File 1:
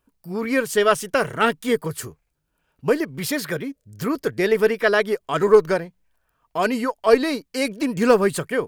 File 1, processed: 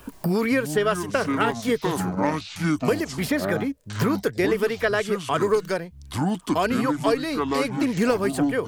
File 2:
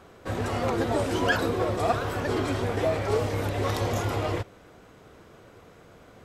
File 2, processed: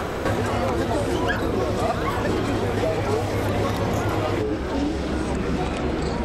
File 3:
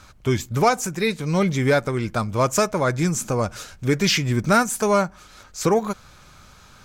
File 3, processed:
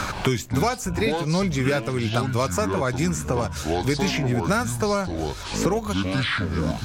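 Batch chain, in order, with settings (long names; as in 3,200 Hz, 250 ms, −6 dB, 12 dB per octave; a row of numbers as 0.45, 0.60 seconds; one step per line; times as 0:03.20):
delay with pitch and tempo change per echo 126 ms, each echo −7 semitones, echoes 2, each echo −6 dB
multiband upward and downward compressor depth 100%
loudness normalisation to −24 LKFS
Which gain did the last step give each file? −4.0, +2.0, −4.0 decibels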